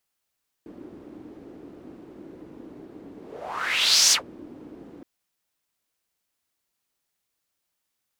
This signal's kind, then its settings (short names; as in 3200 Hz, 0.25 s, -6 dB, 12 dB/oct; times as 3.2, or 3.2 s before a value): whoosh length 4.37 s, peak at 3.46, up 1.02 s, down 0.12 s, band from 310 Hz, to 5800 Hz, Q 3.9, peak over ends 27 dB